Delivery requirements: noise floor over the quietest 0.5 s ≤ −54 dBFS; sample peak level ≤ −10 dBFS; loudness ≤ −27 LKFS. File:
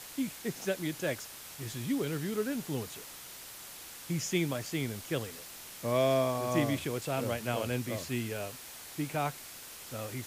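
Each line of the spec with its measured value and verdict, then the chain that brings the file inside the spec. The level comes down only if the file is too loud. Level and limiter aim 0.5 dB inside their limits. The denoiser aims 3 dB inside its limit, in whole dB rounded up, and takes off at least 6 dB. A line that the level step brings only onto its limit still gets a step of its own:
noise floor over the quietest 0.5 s −47 dBFS: out of spec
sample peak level −15.5 dBFS: in spec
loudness −34.5 LKFS: in spec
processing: broadband denoise 10 dB, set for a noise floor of −47 dBFS

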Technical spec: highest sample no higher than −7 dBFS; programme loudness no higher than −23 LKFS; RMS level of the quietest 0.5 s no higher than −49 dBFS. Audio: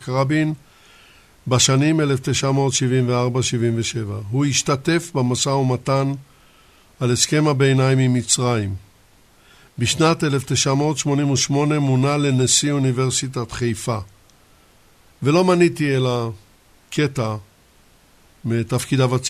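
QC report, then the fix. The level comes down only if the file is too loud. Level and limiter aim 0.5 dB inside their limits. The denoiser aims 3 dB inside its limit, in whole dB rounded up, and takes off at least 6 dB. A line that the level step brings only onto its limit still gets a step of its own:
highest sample −3.0 dBFS: out of spec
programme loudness −19.0 LKFS: out of spec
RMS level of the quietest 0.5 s −53 dBFS: in spec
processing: level −4.5 dB

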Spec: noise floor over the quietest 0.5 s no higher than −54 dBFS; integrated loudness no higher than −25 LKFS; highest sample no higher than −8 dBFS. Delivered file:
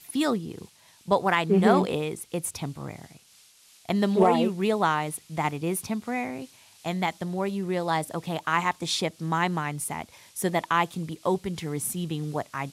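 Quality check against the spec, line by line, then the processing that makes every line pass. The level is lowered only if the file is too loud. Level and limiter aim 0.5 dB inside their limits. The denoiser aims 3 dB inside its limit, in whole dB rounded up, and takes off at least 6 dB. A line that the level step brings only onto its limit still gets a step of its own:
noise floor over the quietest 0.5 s −57 dBFS: in spec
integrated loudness −27.0 LKFS: in spec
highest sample −9.5 dBFS: in spec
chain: no processing needed

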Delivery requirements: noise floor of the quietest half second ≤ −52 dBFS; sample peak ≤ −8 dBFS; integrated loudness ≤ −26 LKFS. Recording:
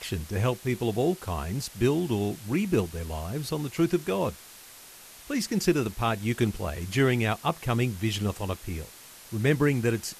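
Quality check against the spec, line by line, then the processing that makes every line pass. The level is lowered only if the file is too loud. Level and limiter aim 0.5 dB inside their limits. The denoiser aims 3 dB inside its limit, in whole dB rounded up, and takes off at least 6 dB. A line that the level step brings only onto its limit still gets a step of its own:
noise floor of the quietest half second −49 dBFS: out of spec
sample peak −10.5 dBFS: in spec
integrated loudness −28.0 LKFS: in spec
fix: broadband denoise 6 dB, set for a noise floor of −49 dBFS

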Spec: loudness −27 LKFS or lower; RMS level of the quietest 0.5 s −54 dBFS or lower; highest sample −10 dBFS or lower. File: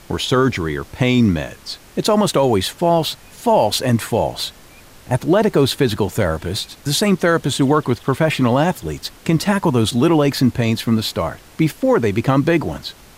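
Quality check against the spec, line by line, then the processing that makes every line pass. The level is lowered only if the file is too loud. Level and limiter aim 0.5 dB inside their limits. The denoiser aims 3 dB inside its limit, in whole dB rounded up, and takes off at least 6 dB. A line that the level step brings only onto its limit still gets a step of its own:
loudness −18.0 LKFS: out of spec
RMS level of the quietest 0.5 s −43 dBFS: out of spec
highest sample −5.0 dBFS: out of spec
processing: broadband denoise 6 dB, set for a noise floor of −43 dBFS
level −9.5 dB

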